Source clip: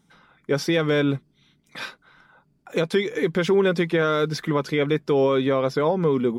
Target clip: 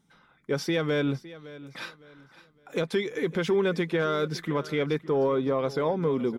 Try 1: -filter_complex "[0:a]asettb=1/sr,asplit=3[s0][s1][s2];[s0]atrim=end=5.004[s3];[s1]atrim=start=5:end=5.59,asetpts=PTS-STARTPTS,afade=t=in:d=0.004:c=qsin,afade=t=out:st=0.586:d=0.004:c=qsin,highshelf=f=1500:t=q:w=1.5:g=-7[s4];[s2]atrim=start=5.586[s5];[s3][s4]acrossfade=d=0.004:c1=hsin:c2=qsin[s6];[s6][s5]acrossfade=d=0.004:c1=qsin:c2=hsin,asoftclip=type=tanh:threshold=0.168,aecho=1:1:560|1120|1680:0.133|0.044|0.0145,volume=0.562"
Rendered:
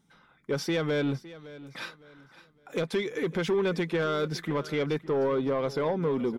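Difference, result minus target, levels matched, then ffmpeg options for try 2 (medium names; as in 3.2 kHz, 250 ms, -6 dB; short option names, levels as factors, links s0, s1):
saturation: distortion +14 dB
-filter_complex "[0:a]asettb=1/sr,asplit=3[s0][s1][s2];[s0]atrim=end=5.004[s3];[s1]atrim=start=5:end=5.59,asetpts=PTS-STARTPTS,afade=t=in:d=0.004:c=qsin,afade=t=out:st=0.586:d=0.004:c=qsin,highshelf=f=1500:t=q:w=1.5:g=-7[s4];[s2]atrim=start=5.586[s5];[s3][s4]acrossfade=d=0.004:c1=hsin:c2=qsin[s6];[s6][s5]acrossfade=d=0.004:c1=qsin:c2=hsin,asoftclip=type=tanh:threshold=0.447,aecho=1:1:560|1120|1680:0.133|0.044|0.0145,volume=0.562"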